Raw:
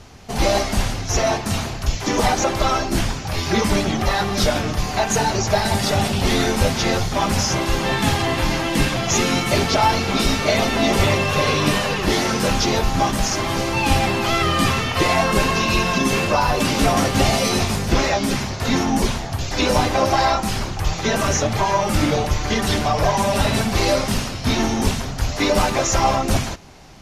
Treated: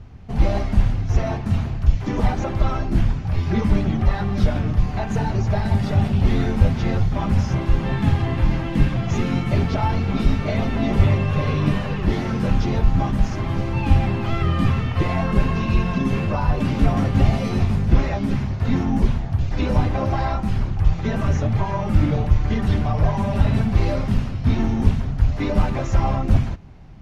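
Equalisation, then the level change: tone controls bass +14 dB, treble -15 dB; -8.5 dB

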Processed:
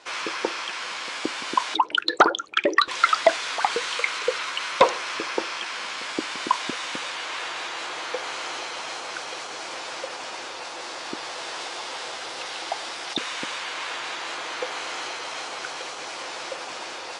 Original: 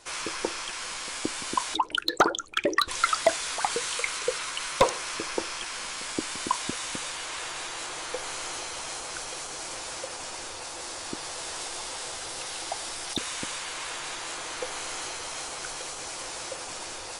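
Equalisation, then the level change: BPF 180–4100 Hz; low shelf 380 Hz -5.5 dB; +6.0 dB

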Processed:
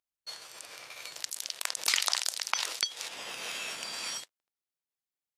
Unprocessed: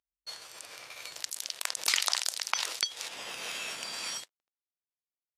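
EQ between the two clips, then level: HPF 82 Hz; 0.0 dB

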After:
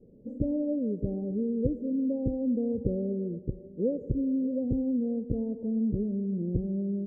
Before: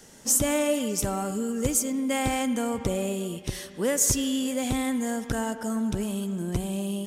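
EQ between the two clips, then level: elliptic low-pass 510 Hz, stop band 60 dB; air absorption 91 m; 0.0 dB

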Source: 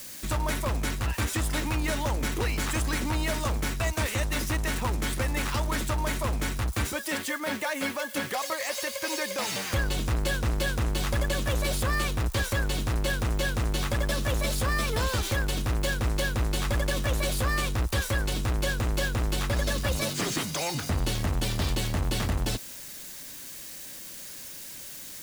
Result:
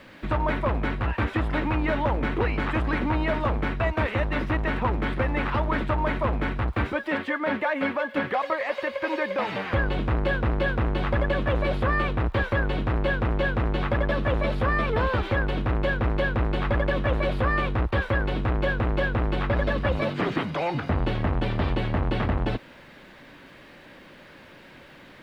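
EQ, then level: LPF 3900 Hz 6 dB/oct; air absorption 490 m; low shelf 190 Hz -7.5 dB; +8.5 dB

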